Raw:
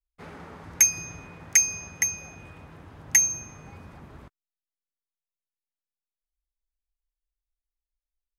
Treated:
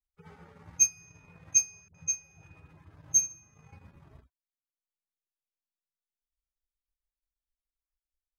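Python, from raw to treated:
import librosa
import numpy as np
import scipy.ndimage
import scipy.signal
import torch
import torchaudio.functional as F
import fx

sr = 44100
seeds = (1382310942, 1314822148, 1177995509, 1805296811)

y = fx.hpss_only(x, sr, part='harmonic')
y = fx.transient(y, sr, attack_db=5, sustain_db=-10)
y = fx.dispersion(y, sr, late='highs', ms=65.0, hz=490.0, at=(1.88, 2.94))
y = F.gain(torch.from_numpy(y), -7.0).numpy()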